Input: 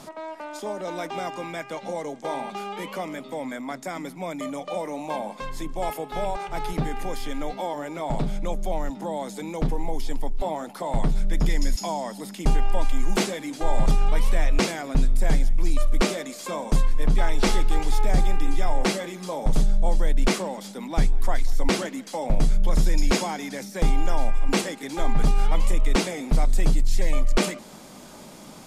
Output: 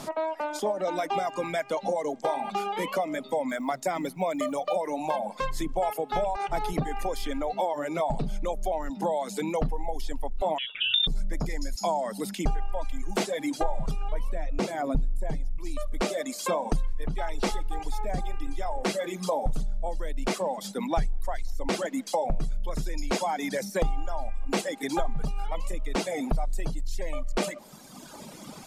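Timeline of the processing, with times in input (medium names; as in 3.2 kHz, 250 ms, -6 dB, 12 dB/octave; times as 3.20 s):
3.49–4.77 s: short-mantissa float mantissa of 4-bit
10.58–11.07 s: frequency inversion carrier 3.6 kHz
14.12–15.58 s: tilt shelf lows +4 dB, about 800 Hz
whole clip: dynamic bell 680 Hz, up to +6 dB, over -43 dBFS, Q 1.2; compression 4:1, threshold -27 dBFS; reverb removal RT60 2 s; trim +4 dB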